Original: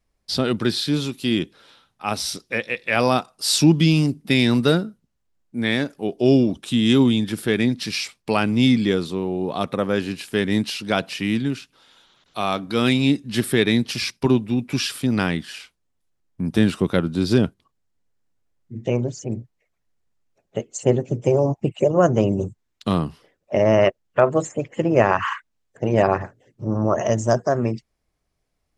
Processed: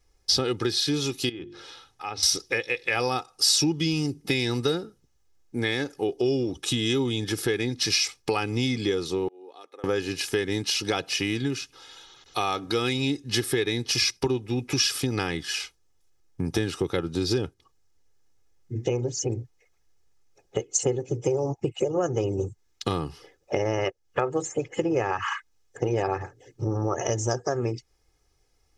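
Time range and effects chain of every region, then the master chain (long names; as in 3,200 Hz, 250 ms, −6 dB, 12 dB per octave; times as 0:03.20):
0:01.29–0:02.23: treble cut that deepens with the level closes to 2,400 Hz, closed at −18 dBFS + mains-hum notches 50/100/150/200/250/300/350 Hz + downward compressor 2 to 1, threshold −46 dBFS
0:09.28–0:09.84: high-pass filter 310 Hz 24 dB per octave + gate with flip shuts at −30 dBFS, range −25 dB + downward compressor 4 to 1, threshold −44 dBFS
whole clip: comb filter 2.4 ms, depth 70%; downward compressor 4 to 1, threshold −28 dBFS; parametric band 5,800 Hz +8.5 dB 0.52 octaves; level +3.5 dB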